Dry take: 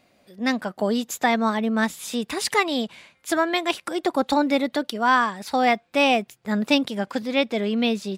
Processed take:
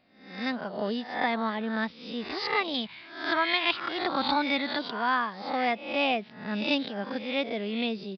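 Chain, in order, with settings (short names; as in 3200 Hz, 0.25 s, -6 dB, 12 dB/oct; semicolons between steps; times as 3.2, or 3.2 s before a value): spectral swells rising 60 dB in 0.59 s; 2.74–4.79 graphic EQ 125/500/1000/2000/4000 Hz +5/-6/+5/+5/+6 dB; downsampling 11025 Hz; gain -8.5 dB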